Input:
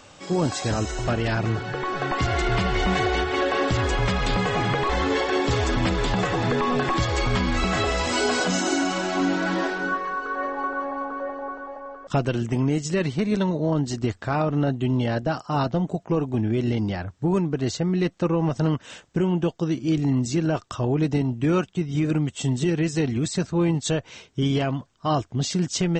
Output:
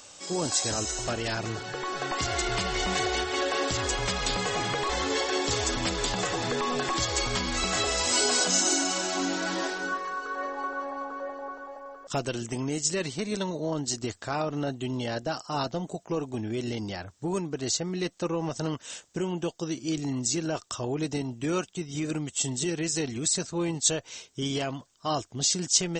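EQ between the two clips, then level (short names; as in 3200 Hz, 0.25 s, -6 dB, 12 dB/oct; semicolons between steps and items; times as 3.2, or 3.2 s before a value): tone controls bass -14 dB, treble +15 dB; low shelf 200 Hz +10 dB; -5.5 dB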